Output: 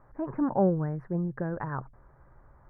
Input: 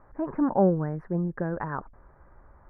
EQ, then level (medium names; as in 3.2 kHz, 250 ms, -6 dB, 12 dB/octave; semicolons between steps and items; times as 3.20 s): peaking EQ 130 Hz +13 dB 0.22 oct; -3.0 dB